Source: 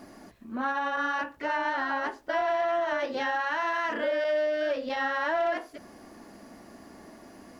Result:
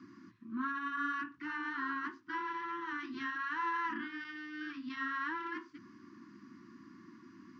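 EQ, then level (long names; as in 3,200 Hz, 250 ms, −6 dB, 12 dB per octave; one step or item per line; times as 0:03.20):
elliptic band-pass filter 110–5,900 Hz
Chebyshev band-stop filter 360–990 Hz, order 5
high-shelf EQ 2,400 Hz −11 dB
−2.5 dB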